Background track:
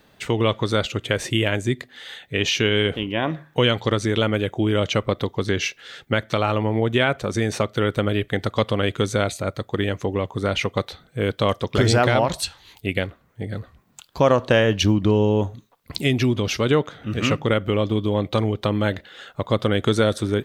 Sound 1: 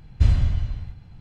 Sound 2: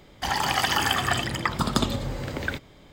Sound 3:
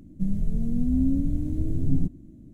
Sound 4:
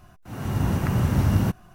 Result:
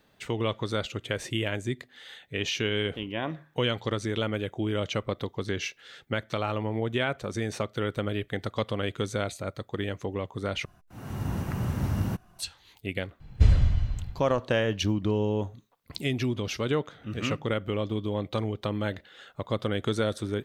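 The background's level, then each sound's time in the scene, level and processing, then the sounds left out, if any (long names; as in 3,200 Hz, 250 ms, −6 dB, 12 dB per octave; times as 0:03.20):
background track −8.5 dB
0:10.65: overwrite with 4 −7.5 dB
0:13.20: mix in 1 −1.5 dB
not used: 2, 3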